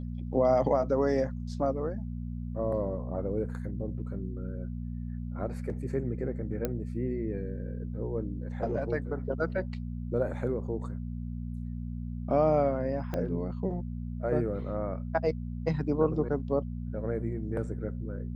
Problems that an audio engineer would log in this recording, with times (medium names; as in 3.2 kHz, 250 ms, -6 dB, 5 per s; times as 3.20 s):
hum 60 Hz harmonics 4 -36 dBFS
6.65 s: pop -16 dBFS
13.14 s: pop -20 dBFS